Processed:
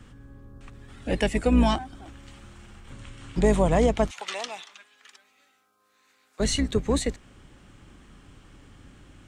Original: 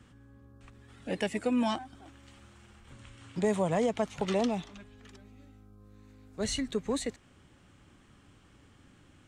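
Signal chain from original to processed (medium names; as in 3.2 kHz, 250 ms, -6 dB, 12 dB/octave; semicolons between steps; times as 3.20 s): octave divider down 2 oct, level 0 dB; 4.11–6.40 s: high-pass 1.2 kHz 12 dB/octave; trim +6.5 dB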